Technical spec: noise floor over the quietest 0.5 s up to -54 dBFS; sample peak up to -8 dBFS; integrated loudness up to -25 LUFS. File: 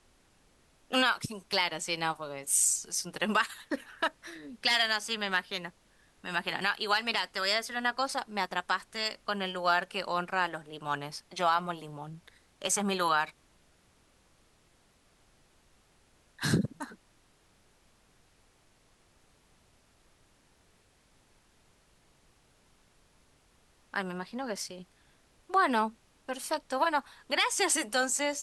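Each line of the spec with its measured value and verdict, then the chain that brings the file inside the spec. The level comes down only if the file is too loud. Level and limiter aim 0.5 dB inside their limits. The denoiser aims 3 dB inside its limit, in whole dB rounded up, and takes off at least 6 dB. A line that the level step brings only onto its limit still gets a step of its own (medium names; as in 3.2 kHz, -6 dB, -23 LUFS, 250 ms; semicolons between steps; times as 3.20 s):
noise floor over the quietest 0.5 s -66 dBFS: pass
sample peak -13.0 dBFS: pass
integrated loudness -30.5 LUFS: pass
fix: none needed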